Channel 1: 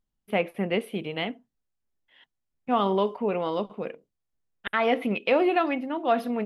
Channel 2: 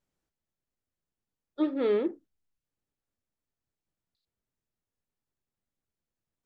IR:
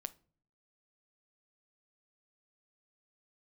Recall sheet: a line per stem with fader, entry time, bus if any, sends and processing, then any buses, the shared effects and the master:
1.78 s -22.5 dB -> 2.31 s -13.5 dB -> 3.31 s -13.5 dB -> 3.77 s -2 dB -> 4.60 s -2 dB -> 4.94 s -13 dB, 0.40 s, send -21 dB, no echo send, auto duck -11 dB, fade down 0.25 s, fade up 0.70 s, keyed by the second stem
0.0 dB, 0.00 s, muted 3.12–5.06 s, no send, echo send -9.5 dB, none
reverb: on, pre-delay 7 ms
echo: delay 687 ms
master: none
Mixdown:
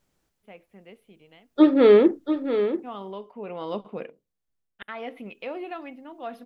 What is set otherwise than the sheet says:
stem 1: entry 0.40 s -> 0.15 s; stem 2 0.0 dB -> +12.0 dB

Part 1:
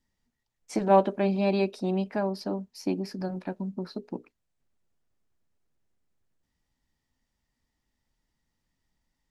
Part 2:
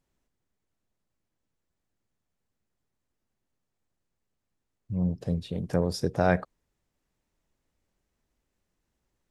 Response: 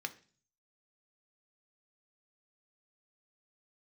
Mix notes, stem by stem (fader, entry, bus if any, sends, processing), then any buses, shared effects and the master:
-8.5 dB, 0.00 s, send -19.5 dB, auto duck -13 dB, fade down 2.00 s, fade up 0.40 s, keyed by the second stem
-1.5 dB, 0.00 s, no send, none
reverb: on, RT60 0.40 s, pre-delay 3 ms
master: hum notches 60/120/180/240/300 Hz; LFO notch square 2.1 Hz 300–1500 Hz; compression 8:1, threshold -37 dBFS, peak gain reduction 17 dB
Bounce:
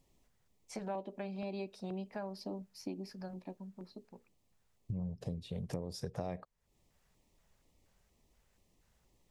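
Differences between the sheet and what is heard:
stem 2 -1.5 dB -> +7.0 dB; master: missing hum notches 60/120/180/240/300 Hz

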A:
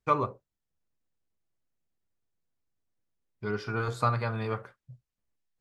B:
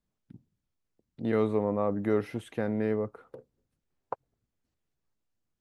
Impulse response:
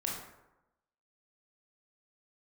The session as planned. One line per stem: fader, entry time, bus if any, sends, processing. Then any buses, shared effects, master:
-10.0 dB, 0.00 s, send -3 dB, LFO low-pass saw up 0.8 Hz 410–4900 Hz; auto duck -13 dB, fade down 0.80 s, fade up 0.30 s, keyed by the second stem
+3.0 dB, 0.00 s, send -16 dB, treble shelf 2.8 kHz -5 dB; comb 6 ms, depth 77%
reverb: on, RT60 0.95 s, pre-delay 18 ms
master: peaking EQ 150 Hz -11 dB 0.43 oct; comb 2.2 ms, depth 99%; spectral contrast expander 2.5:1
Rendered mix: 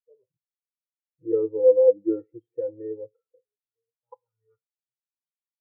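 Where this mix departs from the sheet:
stem A: send off; master: missing peaking EQ 150 Hz -11 dB 0.43 oct

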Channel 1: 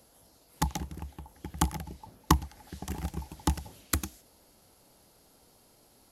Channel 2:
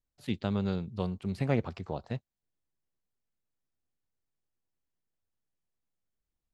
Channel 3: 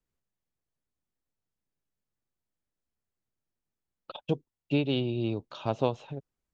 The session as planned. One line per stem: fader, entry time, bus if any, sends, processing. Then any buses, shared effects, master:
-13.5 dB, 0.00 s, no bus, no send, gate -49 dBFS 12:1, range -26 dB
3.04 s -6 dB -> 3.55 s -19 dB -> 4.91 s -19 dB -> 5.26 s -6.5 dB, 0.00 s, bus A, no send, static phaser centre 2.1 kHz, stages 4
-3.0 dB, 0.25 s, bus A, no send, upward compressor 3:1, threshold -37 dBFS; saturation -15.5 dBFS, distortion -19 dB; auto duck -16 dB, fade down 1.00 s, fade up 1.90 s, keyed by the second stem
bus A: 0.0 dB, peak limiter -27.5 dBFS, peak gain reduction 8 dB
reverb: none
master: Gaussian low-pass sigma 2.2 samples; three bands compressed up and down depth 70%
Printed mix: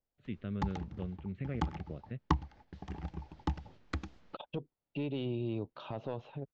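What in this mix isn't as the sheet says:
stem 1 -13.5 dB -> -6.0 dB; master: missing three bands compressed up and down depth 70%

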